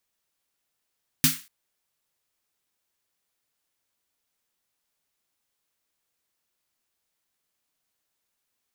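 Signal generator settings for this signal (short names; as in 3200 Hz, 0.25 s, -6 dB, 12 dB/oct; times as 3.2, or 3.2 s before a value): snare drum length 0.24 s, tones 160 Hz, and 260 Hz, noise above 1400 Hz, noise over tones 4 dB, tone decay 0.21 s, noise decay 0.33 s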